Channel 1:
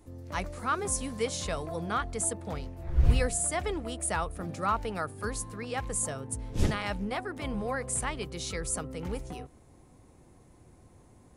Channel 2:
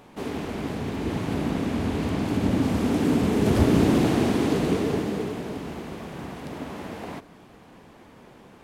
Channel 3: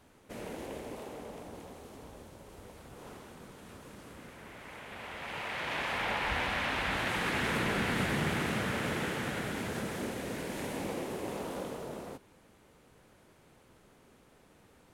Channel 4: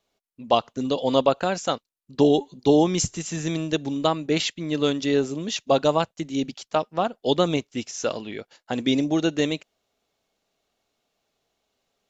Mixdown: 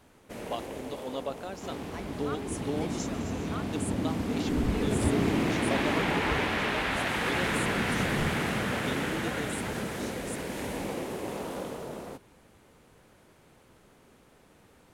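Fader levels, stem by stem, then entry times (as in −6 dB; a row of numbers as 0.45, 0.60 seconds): −11.0, −7.5, +2.5, −16.0 decibels; 1.60, 1.45, 0.00, 0.00 seconds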